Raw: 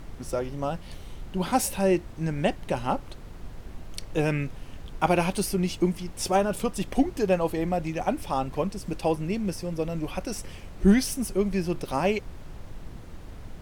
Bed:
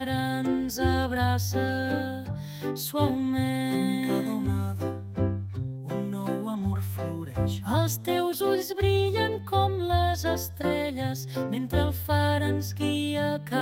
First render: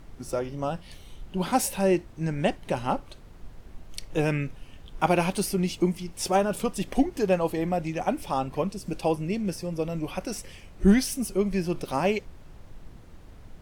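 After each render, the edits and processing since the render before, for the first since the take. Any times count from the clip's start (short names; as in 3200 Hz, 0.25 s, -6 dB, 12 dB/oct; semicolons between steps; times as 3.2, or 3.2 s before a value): noise print and reduce 6 dB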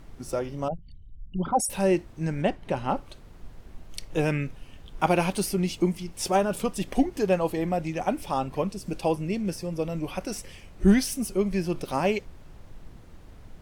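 0.68–1.7 formant sharpening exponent 3; 2.41–2.95 high shelf 4100 Hz -> 6100 Hz -11 dB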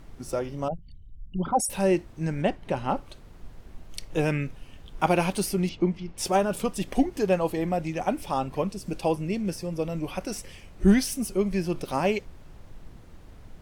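5.69–6.18 air absorption 200 m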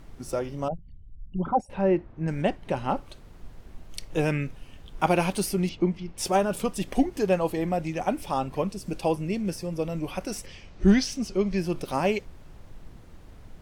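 0.72–2.28 LPF 1800 Hz; 10.46–11.58 resonant high shelf 7800 Hz -14 dB, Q 1.5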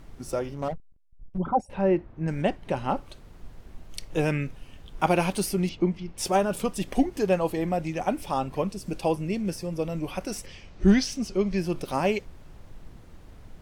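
0.54–1.38 backlash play -32 dBFS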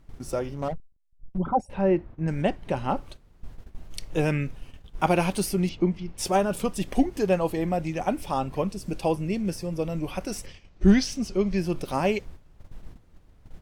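gate -42 dBFS, range -11 dB; low shelf 140 Hz +3.5 dB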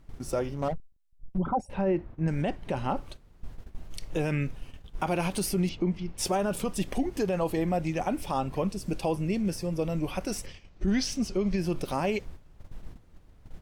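limiter -18.5 dBFS, peak gain reduction 12 dB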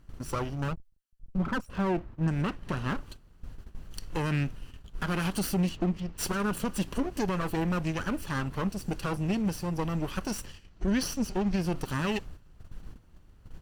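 minimum comb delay 0.67 ms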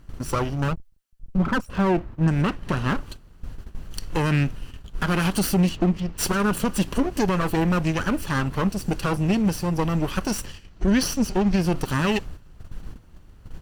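gain +7.5 dB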